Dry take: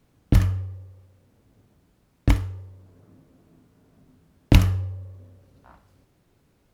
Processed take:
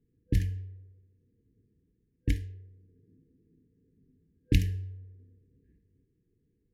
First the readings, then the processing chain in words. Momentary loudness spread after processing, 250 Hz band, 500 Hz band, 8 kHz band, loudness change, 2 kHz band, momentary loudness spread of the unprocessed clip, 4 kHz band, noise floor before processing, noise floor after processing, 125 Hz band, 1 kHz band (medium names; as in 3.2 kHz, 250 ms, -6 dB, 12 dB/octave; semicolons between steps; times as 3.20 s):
19 LU, -9.0 dB, -11.0 dB, -9.0 dB, -9.0 dB, -9.5 dB, 19 LU, -9.0 dB, -65 dBFS, -75 dBFS, -9.0 dB, under -40 dB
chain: level-controlled noise filter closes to 870 Hz, open at -15.5 dBFS; FFT band-reject 500–1600 Hz; trim -9 dB